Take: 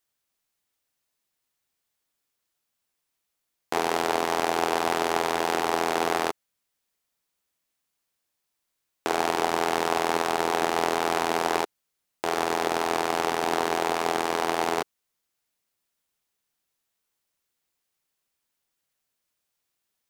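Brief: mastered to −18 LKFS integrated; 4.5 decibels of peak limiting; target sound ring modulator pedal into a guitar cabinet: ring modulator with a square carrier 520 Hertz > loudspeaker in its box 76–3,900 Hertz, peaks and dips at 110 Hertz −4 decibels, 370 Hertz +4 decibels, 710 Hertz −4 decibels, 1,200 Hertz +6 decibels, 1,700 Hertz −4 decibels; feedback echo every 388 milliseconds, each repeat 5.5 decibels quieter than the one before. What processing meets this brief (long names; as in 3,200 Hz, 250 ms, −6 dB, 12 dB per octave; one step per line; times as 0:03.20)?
brickwall limiter −11 dBFS
repeating echo 388 ms, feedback 53%, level −5.5 dB
ring modulator with a square carrier 520 Hz
loudspeaker in its box 76–3,900 Hz, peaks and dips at 110 Hz −4 dB, 370 Hz +4 dB, 710 Hz −4 dB, 1,200 Hz +6 dB, 1,700 Hz −4 dB
level +8 dB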